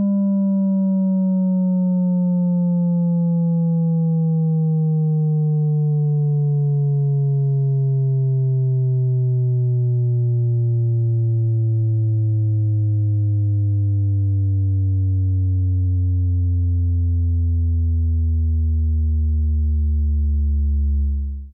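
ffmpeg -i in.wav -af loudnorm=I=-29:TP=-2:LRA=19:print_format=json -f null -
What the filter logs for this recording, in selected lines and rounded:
"input_i" : "-19.4",
"input_tp" : "-15.5",
"input_lra" : "2.2",
"input_thresh" : "-29.4",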